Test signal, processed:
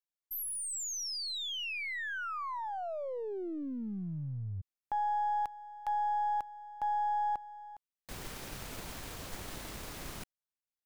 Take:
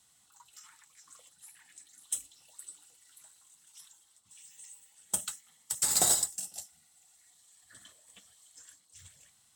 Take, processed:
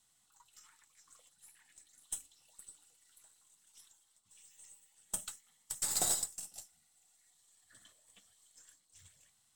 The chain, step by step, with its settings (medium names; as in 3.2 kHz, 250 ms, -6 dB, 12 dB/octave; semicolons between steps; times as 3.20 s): partial rectifier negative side -3 dB; trim -5.5 dB